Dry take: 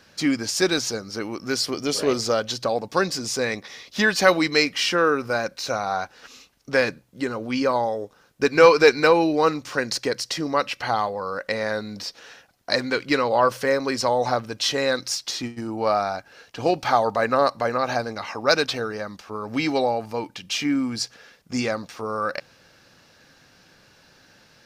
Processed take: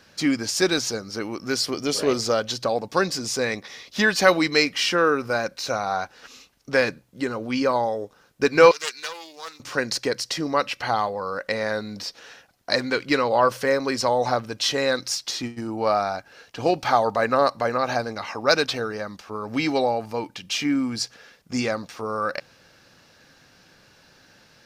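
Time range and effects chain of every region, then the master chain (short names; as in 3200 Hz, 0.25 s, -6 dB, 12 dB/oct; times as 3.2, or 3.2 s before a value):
8.71–9.6 differentiator + Doppler distortion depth 0.2 ms
whole clip: dry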